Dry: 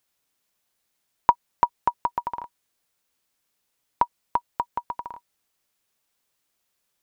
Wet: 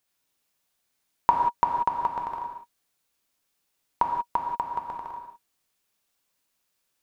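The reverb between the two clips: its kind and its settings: gated-style reverb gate 210 ms flat, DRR 1 dB; trim -3 dB

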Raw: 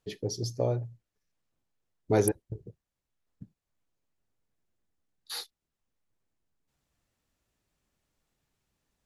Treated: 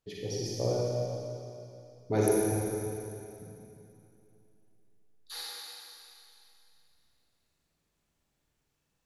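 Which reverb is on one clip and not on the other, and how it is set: Schroeder reverb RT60 2.8 s, DRR -5.5 dB; trim -5.5 dB

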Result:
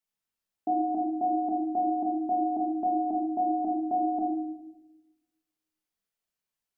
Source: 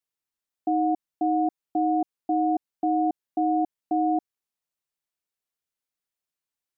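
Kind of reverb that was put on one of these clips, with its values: simulated room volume 360 m³, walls mixed, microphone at 1.5 m; trim -3 dB

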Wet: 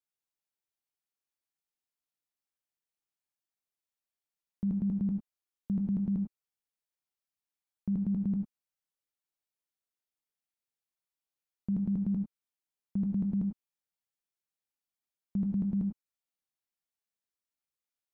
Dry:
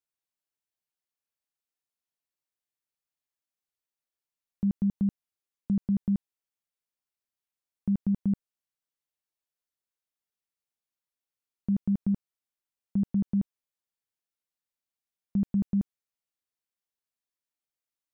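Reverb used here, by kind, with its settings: gated-style reverb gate 120 ms rising, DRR 5 dB; trim -4.5 dB

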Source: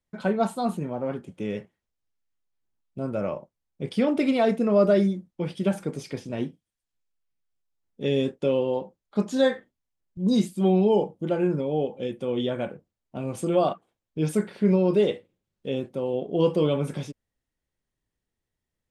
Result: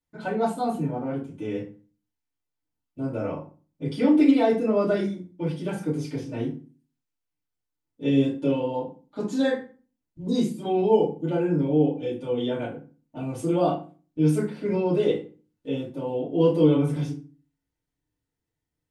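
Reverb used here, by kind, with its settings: FDN reverb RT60 0.36 s, low-frequency decay 1.4×, high-frequency decay 0.75×, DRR -8 dB; trim -9.5 dB

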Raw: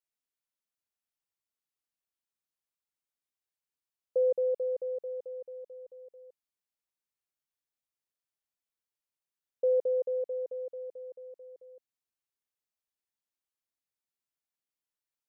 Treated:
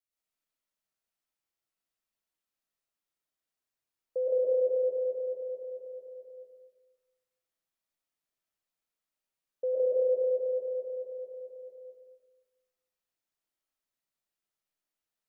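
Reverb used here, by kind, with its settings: algorithmic reverb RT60 1.2 s, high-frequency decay 0.5×, pre-delay 80 ms, DRR -7.5 dB; trim -4.5 dB

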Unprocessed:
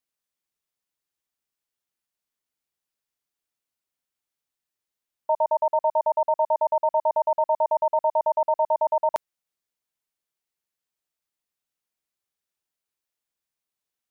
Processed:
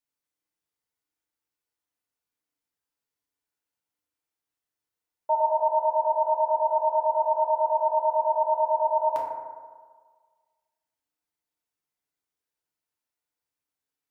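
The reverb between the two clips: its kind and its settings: FDN reverb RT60 1.6 s, low-frequency decay 0.85×, high-frequency decay 0.3×, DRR -4 dB; trim -6 dB

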